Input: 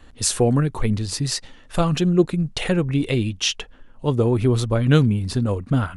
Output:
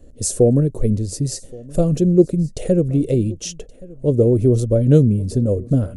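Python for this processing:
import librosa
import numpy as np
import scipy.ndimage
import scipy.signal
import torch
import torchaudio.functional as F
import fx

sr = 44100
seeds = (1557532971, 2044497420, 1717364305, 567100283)

y = fx.curve_eq(x, sr, hz=(260.0, 580.0, 890.0, 2000.0, 3600.0, 6700.0), db=(0, 4, -21, -19, -18, -3))
y = y + 10.0 ** (-22.5 / 20.0) * np.pad(y, (int(1123 * sr / 1000.0), 0))[:len(y)]
y = F.gain(torch.from_numpy(y), 3.0).numpy()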